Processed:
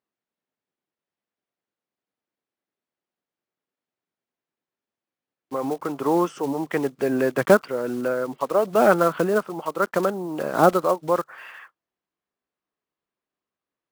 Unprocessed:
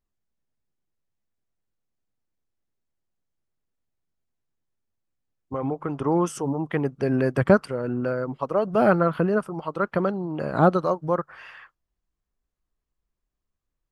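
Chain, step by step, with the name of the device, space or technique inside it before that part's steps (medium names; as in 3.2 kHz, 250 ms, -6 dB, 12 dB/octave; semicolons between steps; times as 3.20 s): early digital voice recorder (band-pass 270–3700 Hz; block-companded coder 5-bit); trim +3 dB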